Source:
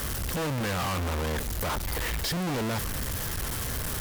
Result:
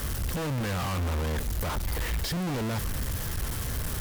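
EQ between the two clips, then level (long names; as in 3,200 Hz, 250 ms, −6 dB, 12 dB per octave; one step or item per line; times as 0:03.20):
low-shelf EQ 180 Hz +6.5 dB
−3.0 dB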